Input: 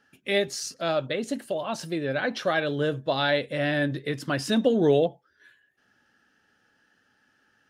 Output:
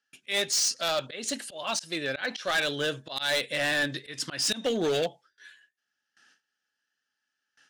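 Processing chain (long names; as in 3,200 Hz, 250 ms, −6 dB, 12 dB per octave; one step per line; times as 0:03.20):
noise gate with hold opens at −55 dBFS
meter weighting curve ITU-R 468
volume swells 166 ms
low-shelf EQ 240 Hz +11.5 dB
gain into a clipping stage and back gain 22 dB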